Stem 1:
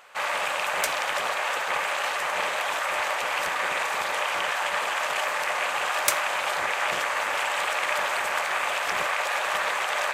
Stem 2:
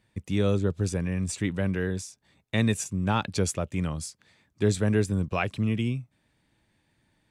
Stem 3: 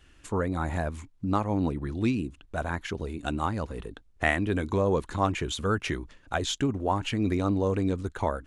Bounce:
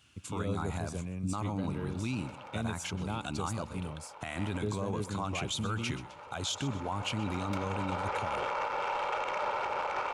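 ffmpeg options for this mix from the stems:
ffmpeg -i stem1.wav -i stem2.wav -i stem3.wav -filter_complex "[0:a]aecho=1:1:2.2:0.55,adynamicsmooth=sensitivity=0.5:basefreq=1200,adelay=1450,volume=-1dB[link_01];[1:a]volume=-10dB,asplit=2[link_02][link_03];[2:a]highpass=frequency=100:width=0.5412,highpass=frequency=100:width=1.3066,equalizer=frequency=400:width_type=o:width=2.1:gain=-12,volume=1.5dB,asplit=2[link_04][link_05];[link_05]volume=-17dB[link_06];[link_03]apad=whole_len=511149[link_07];[link_01][link_07]sidechaincompress=threshold=-58dB:ratio=4:attack=16:release=1410[link_08];[link_06]aecho=0:1:128|256|384|512|640:1|0.32|0.102|0.0328|0.0105[link_09];[link_08][link_02][link_04][link_09]amix=inputs=4:normalize=0,equalizer=frequency=1800:width=5.4:gain=-14,alimiter=limit=-24dB:level=0:latency=1:release=36" out.wav

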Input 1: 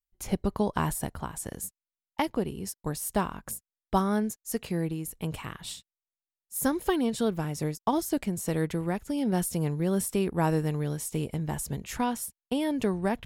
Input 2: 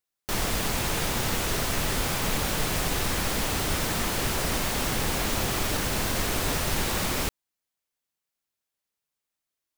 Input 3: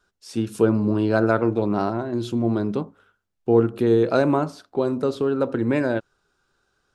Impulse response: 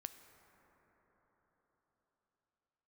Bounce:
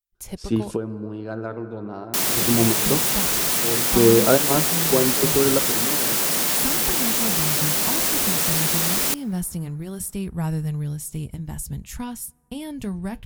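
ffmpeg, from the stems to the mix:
-filter_complex "[0:a]asubboost=boost=5.5:cutoff=170,flanger=delay=1.3:depth=6:regen=-74:speed=0.19:shape=triangular,volume=-2dB,asplit=3[link_01][link_02][link_03];[link_01]atrim=end=0.76,asetpts=PTS-STARTPTS,afade=type=out:start_time=0.756:duration=0.004:curve=hsin[link_04];[link_02]atrim=start=0.76:end=2.28,asetpts=PTS-STARTPTS,volume=0[link_05];[link_03]atrim=start=2.28,asetpts=PTS-STARTPTS,afade=type=in:duration=0.004:curve=hsin[link_06];[link_04][link_05][link_06]concat=n=3:v=0:a=1,asplit=3[link_07][link_08][link_09];[link_08]volume=-16dB[link_10];[1:a]highpass=frequency=150:width=0.5412,highpass=frequency=150:width=1.3066,asoftclip=type=tanh:threshold=-28dB,acrusher=bits=5:mix=0:aa=0.000001,adelay=1850,volume=3dB,asplit=2[link_11][link_12];[link_12]volume=-8.5dB[link_13];[2:a]lowpass=frequency=2000:poles=1,adelay=150,volume=1dB,asplit=2[link_14][link_15];[link_15]volume=-8dB[link_16];[link_09]apad=whole_len=312695[link_17];[link_14][link_17]sidechaingate=range=-33dB:threshold=-40dB:ratio=16:detection=peak[link_18];[3:a]atrim=start_sample=2205[link_19];[link_10][link_13][link_16]amix=inputs=3:normalize=0[link_20];[link_20][link_19]afir=irnorm=-1:irlink=0[link_21];[link_07][link_11][link_18][link_21]amix=inputs=4:normalize=0,highshelf=frequency=4900:gain=10"

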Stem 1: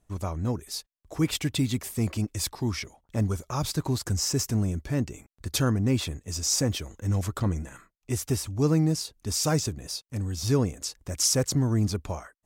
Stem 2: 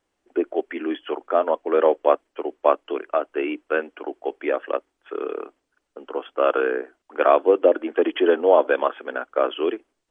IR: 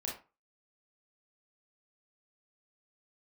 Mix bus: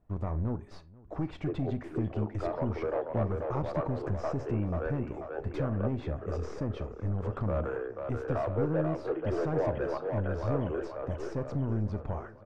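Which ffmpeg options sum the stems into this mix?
-filter_complex "[0:a]acompressor=threshold=-28dB:ratio=6,aeval=exprs='(tanh(28.2*val(0)+0.45)-tanh(0.45))/28.2':channel_layout=same,volume=1.5dB,asplit=3[link_01][link_02][link_03];[link_02]volume=-12.5dB[link_04];[link_03]volume=-21.5dB[link_05];[1:a]highpass=260,asoftclip=type=hard:threshold=-15dB,adelay=1100,volume=-13.5dB,asplit=3[link_06][link_07][link_08];[link_07]volume=-12dB[link_09];[link_08]volume=-3dB[link_10];[2:a]atrim=start_sample=2205[link_11];[link_04][link_09]amix=inputs=2:normalize=0[link_12];[link_12][link_11]afir=irnorm=-1:irlink=0[link_13];[link_05][link_10]amix=inputs=2:normalize=0,aecho=0:1:487|974|1461|1948|2435|2922|3409|3896:1|0.56|0.314|0.176|0.0983|0.0551|0.0308|0.0173[link_14];[link_01][link_06][link_13][link_14]amix=inputs=4:normalize=0,lowpass=1300"

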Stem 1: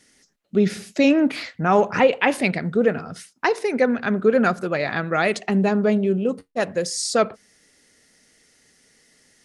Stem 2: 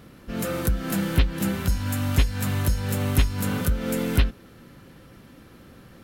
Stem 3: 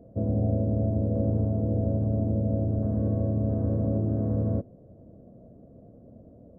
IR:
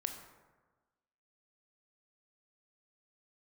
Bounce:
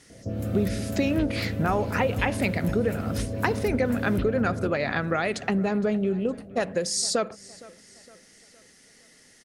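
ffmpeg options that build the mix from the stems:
-filter_complex "[0:a]acompressor=threshold=-25dB:ratio=6,volume=2.5dB,asplit=2[link_01][link_02];[link_02]volume=-21.5dB[link_03];[1:a]volume=-14.5dB,asplit=2[link_04][link_05];[link_05]volume=-24dB[link_06];[2:a]acompressor=threshold=-35dB:ratio=2,adelay=100,volume=2.5dB,asplit=2[link_07][link_08];[link_08]volume=-8.5dB[link_09];[link_03][link_06][link_09]amix=inputs=3:normalize=0,aecho=0:1:463|926|1389|1852|2315|2778|3241:1|0.48|0.23|0.111|0.0531|0.0255|0.0122[link_10];[link_01][link_04][link_07][link_10]amix=inputs=4:normalize=0"

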